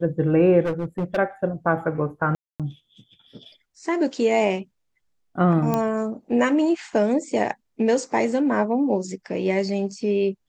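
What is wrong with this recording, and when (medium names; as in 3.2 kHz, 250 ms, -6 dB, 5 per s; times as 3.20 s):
0.65–1.18 s: clipped -20.5 dBFS
2.35–2.60 s: dropout 247 ms
5.74 s: pop -10 dBFS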